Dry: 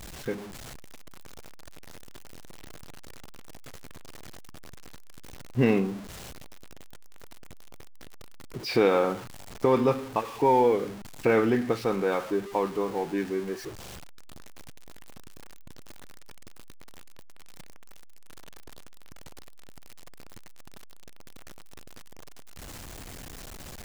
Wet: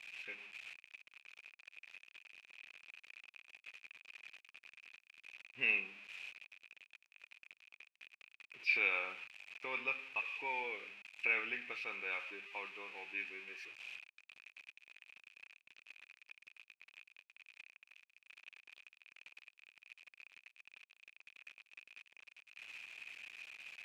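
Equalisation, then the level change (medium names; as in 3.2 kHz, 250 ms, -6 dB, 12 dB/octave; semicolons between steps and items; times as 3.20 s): band-pass filter 2.5 kHz, Q 15; +11.5 dB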